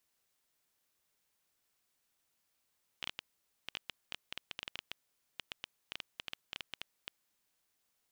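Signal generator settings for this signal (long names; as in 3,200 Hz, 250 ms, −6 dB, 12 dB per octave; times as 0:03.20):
Geiger counter clicks 8.9 per second −22 dBFS 4.10 s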